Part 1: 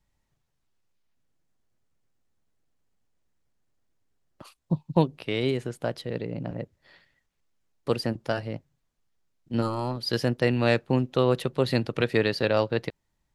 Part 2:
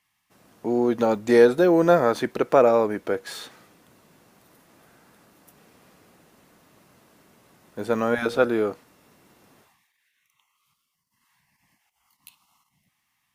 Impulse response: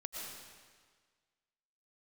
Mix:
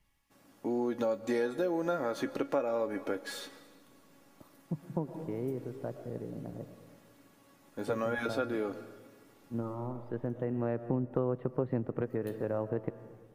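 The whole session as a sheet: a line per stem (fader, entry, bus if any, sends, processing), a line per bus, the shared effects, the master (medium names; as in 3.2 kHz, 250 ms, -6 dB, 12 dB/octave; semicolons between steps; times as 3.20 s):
+2.0 dB, 0.00 s, send -18 dB, Bessel low-pass 1 kHz, order 4; auto duck -14 dB, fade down 0.40 s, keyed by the second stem
+2.0 dB, 0.00 s, send -14.5 dB, feedback comb 280 Hz, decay 0.15 s, harmonics all, mix 80%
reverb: on, RT60 1.6 s, pre-delay 75 ms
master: peaking EQ 300 Hz +2.5 dB; compression 4:1, threshold -29 dBFS, peak gain reduction 13 dB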